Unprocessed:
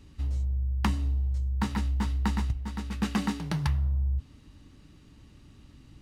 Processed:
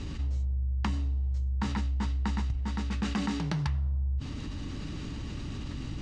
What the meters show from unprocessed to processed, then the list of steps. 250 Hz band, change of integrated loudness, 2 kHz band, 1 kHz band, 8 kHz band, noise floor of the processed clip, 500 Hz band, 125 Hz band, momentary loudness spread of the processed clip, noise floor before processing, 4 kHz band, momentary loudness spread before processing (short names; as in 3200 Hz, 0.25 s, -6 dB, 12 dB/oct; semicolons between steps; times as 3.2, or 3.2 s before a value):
-1.5 dB, -2.5 dB, -1.5 dB, -2.5 dB, -2.0 dB, -38 dBFS, 0.0 dB, -1.0 dB, 8 LU, -55 dBFS, 0.0 dB, 4 LU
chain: LPF 7500 Hz 24 dB/oct; fast leveller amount 70%; gain -5 dB